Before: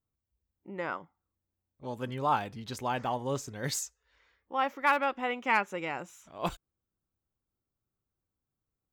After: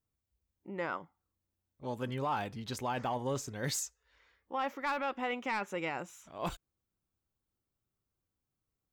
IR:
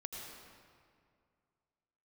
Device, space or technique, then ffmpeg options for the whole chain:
soft clipper into limiter: -af "asoftclip=type=tanh:threshold=-19dB,alimiter=level_in=2dB:limit=-24dB:level=0:latency=1:release=14,volume=-2dB"

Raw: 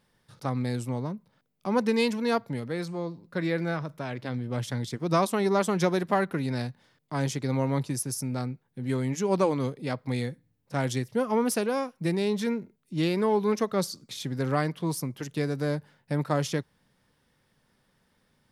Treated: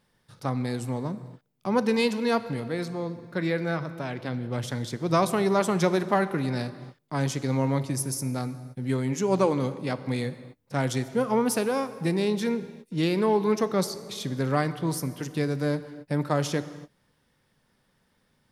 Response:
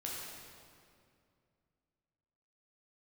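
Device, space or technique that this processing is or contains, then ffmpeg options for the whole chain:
keyed gated reverb: -filter_complex "[0:a]asplit=3[link_01][link_02][link_03];[1:a]atrim=start_sample=2205[link_04];[link_02][link_04]afir=irnorm=-1:irlink=0[link_05];[link_03]apad=whole_len=816458[link_06];[link_05][link_06]sidechaingate=range=-33dB:threshold=-58dB:ratio=16:detection=peak,volume=-11dB[link_07];[link_01][link_07]amix=inputs=2:normalize=0"

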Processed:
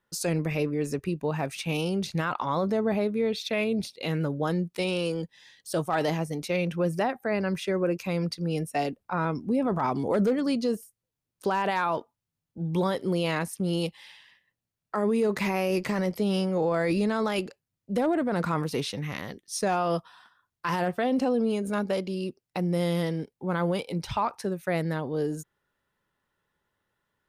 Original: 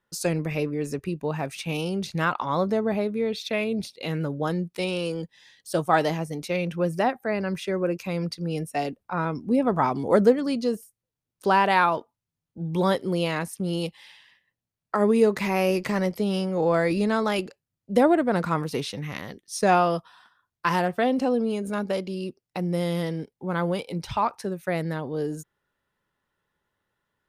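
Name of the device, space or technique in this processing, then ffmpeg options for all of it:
clipper into limiter: -af "asoftclip=type=hard:threshold=-10.5dB,alimiter=limit=-18dB:level=0:latency=1:release=17"

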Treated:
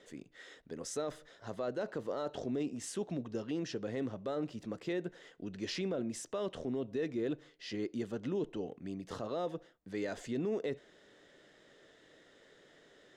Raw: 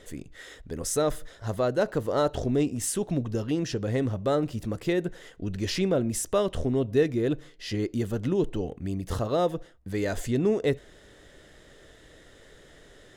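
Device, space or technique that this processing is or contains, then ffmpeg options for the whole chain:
DJ mixer with the lows and highs turned down: -filter_complex "[0:a]acrossover=split=150 7400:gain=0.0891 1 0.112[link_01][link_02][link_03];[link_01][link_02][link_03]amix=inputs=3:normalize=0,alimiter=limit=-20dB:level=0:latency=1:release=10,volume=-7.5dB"

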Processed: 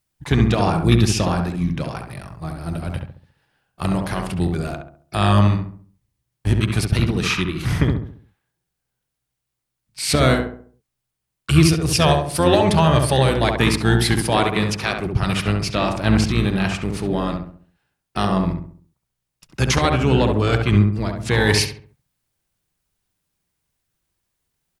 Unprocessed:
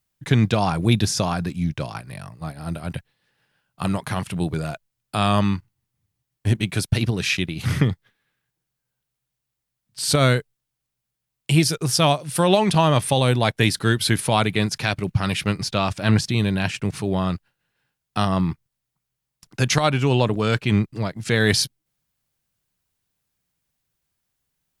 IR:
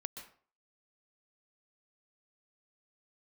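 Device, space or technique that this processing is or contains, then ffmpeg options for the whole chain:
octave pedal: -filter_complex "[0:a]asettb=1/sr,asplit=3[link_01][link_02][link_03];[link_01]atrim=end=14.144[link_04];[link_02]atrim=start=14.14:end=15.06,asetpts=PTS-STARTPTS,afade=type=in:duration=0.004:curve=qsin,afade=type=out:start_time=0.916:duration=0.004:curve=qsin,highpass=150[link_05];[link_03]atrim=start=15.056[link_06];[link_04][link_05]acrossfade=duration=0.004:curve1=hsin:curve2=qsin[link_07];[link_07][link_06]acrossfade=duration=0.004:curve1=qsin:curve2=hsin,equalizer=frequency=350:width=7.4:gain=3.5,asplit=2[link_08][link_09];[link_09]asetrate=22050,aresample=44100,atempo=2,volume=-7dB[link_10];[link_08][link_10]amix=inputs=2:normalize=0,asplit=2[link_11][link_12];[link_12]adelay=68,lowpass=frequency=1500:poles=1,volume=-3dB,asplit=2[link_13][link_14];[link_14]adelay=68,lowpass=frequency=1500:poles=1,volume=0.43,asplit=2[link_15][link_16];[link_16]adelay=68,lowpass=frequency=1500:poles=1,volume=0.43,asplit=2[link_17][link_18];[link_18]adelay=68,lowpass=frequency=1500:poles=1,volume=0.43,asplit=2[link_19][link_20];[link_20]adelay=68,lowpass=frequency=1500:poles=1,volume=0.43,asplit=2[link_21][link_22];[link_22]adelay=68,lowpass=frequency=1500:poles=1,volume=0.43[link_23];[link_11][link_13][link_15][link_17][link_19][link_21][link_23]amix=inputs=7:normalize=0"

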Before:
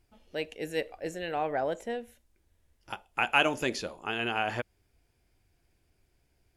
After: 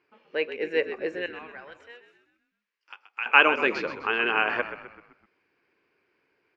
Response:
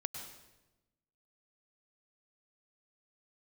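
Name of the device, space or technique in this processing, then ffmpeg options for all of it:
phone earpiece: -filter_complex "[0:a]highpass=91,highpass=350,equalizer=frequency=440:width_type=q:width=4:gain=5,equalizer=frequency=700:width_type=q:width=4:gain=-9,equalizer=frequency=1100:width_type=q:width=4:gain=7,equalizer=frequency=1600:width_type=q:width=4:gain=4,equalizer=frequency=2400:width_type=q:width=4:gain=4,equalizer=frequency=3500:width_type=q:width=4:gain=-9,lowpass=frequency=3800:width=0.5412,lowpass=frequency=3800:width=1.3066,asettb=1/sr,asplit=3[link_01][link_02][link_03];[link_01]atrim=end=1.264[link_04];[link_02]atrim=start=1.26:end=3.26,asetpts=PTS-STARTPTS,afade=type=in:duration=0.004:curve=qsin,afade=type=out:start_time=1.996:duration=0.004:curve=qsin,aderivative[link_05];[link_03]atrim=start=3.256[link_06];[link_04][link_05]acrossfade=duration=0.004:curve1=hsin:curve2=qsin[link_07];[link_07][link_06]acrossfade=duration=0.004:curve1=qsin:curve2=hsin,asplit=6[link_08][link_09][link_10][link_11][link_12][link_13];[link_09]adelay=128,afreqshift=-55,volume=-11dB[link_14];[link_10]adelay=256,afreqshift=-110,volume=-17.6dB[link_15];[link_11]adelay=384,afreqshift=-165,volume=-24.1dB[link_16];[link_12]adelay=512,afreqshift=-220,volume=-30.7dB[link_17];[link_13]adelay=640,afreqshift=-275,volume=-37.2dB[link_18];[link_08][link_14][link_15][link_16][link_17][link_18]amix=inputs=6:normalize=0,volume=5.5dB"

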